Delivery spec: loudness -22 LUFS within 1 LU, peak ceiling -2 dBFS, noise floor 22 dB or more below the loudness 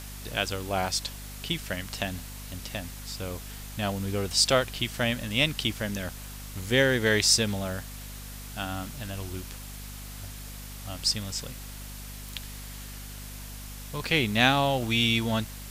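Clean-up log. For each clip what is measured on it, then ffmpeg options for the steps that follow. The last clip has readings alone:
hum 50 Hz; harmonics up to 250 Hz; hum level -40 dBFS; noise floor -41 dBFS; noise floor target -49 dBFS; loudness -27.0 LUFS; peak -5.5 dBFS; loudness target -22.0 LUFS
-> -af "bandreject=f=50:t=h:w=6,bandreject=f=100:t=h:w=6,bandreject=f=150:t=h:w=6,bandreject=f=200:t=h:w=6,bandreject=f=250:t=h:w=6"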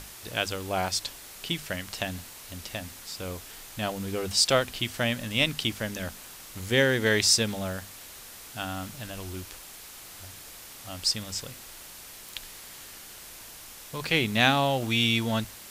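hum none; noise floor -46 dBFS; noise floor target -49 dBFS
-> -af "afftdn=nr=6:nf=-46"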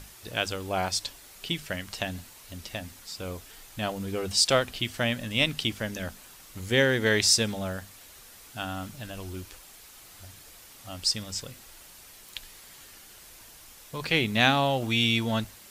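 noise floor -50 dBFS; loudness -27.0 LUFS; peak -5.5 dBFS; loudness target -22.0 LUFS
-> -af "volume=5dB,alimiter=limit=-2dB:level=0:latency=1"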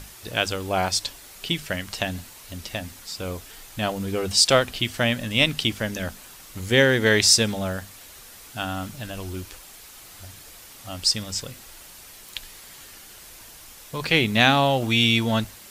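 loudness -22.0 LUFS; peak -2.0 dBFS; noise floor -45 dBFS

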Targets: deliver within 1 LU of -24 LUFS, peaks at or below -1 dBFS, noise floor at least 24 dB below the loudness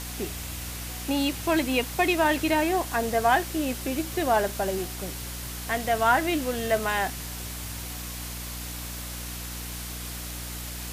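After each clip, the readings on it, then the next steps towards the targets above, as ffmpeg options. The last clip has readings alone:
hum 60 Hz; harmonics up to 300 Hz; hum level -36 dBFS; noise floor -36 dBFS; noise floor target -52 dBFS; loudness -27.5 LUFS; peak -9.5 dBFS; loudness target -24.0 LUFS
-> -af "bandreject=f=60:t=h:w=6,bandreject=f=120:t=h:w=6,bandreject=f=180:t=h:w=6,bandreject=f=240:t=h:w=6,bandreject=f=300:t=h:w=6"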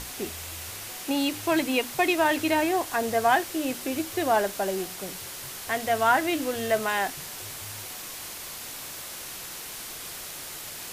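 hum none; noise floor -39 dBFS; noise floor target -52 dBFS
-> -af "afftdn=nr=13:nf=-39"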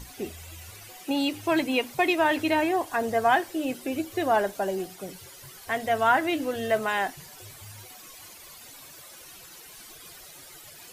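noise floor -47 dBFS; noise floor target -50 dBFS
-> -af "afftdn=nr=6:nf=-47"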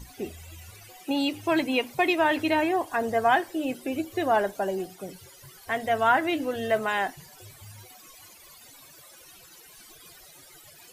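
noise floor -51 dBFS; loudness -26.0 LUFS; peak -10.0 dBFS; loudness target -24.0 LUFS
-> -af "volume=2dB"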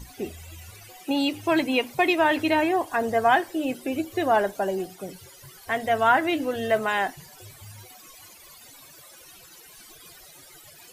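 loudness -24.0 LUFS; peak -8.0 dBFS; noise floor -49 dBFS

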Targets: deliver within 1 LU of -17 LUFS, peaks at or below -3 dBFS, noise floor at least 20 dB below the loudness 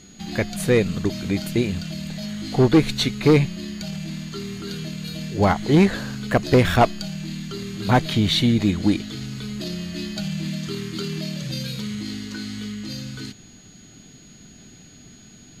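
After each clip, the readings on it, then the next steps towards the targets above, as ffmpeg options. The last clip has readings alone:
steady tone 6700 Hz; tone level -50 dBFS; loudness -23.0 LUFS; peak -7.0 dBFS; loudness target -17.0 LUFS
-> -af "bandreject=f=6.7k:w=30"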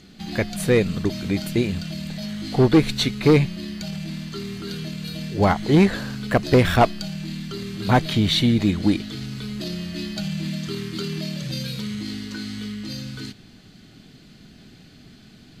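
steady tone none; loudness -23.0 LUFS; peak -7.0 dBFS; loudness target -17.0 LUFS
-> -af "volume=6dB,alimiter=limit=-3dB:level=0:latency=1"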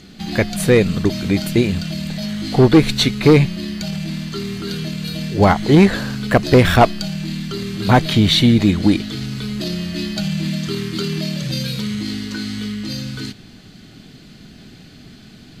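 loudness -17.5 LUFS; peak -3.0 dBFS; noise floor -42 dBFS

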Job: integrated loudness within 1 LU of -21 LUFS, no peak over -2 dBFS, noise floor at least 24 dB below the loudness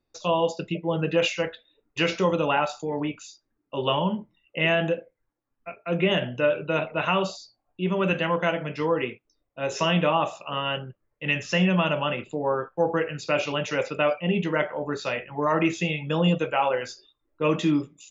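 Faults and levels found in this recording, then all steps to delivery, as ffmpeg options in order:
loudness -25.5 LUFS; peak -11.0 dBFS; loudness target -21.0 LUFS
-> -af "volume=4.5dB"

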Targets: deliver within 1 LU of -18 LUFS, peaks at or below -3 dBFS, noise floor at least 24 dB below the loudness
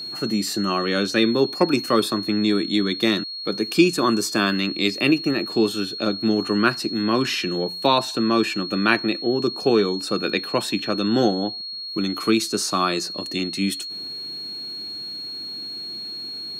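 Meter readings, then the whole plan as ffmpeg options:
steady tone 4300 Hz; tone level -30 dBFS; loudness -22.0 LUFS; peak -3.5 dBFS; loudness target -18.0 LUFS
-> -af "bandreject=f=4.3k:w=30"
-af "volume=4dB,alimiter=limit=-3dB:level=0:latency=1"

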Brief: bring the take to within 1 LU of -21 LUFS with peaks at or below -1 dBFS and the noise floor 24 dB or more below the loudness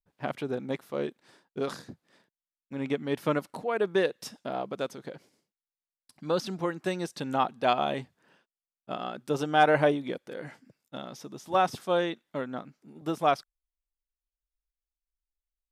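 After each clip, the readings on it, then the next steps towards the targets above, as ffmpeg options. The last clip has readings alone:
loudness -30.0 LUFS; peak -9.0 dBFS; loudness target -21.0 LUFS
-> -af "volume=9dB,alimiter=limit=-1dB:level=0:latency=1"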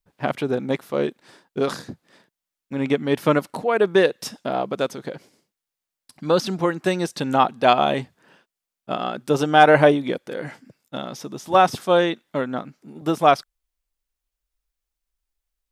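loudness -21.0 LUFS; peak -1.0 dBFS; noise floor -87 dBFS

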